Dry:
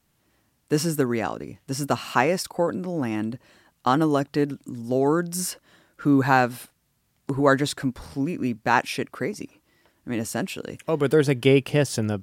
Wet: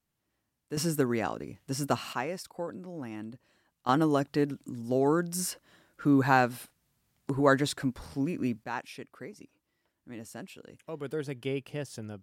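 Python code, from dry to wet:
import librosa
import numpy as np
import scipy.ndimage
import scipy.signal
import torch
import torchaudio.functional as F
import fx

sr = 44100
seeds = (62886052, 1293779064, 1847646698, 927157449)

y = fx.gain(x, sr, db=fx.steps((0.0, -14.0), (0.77, -4.5), (2.13, -13.0), (3.89, -4.5), (8.64, -15.5)))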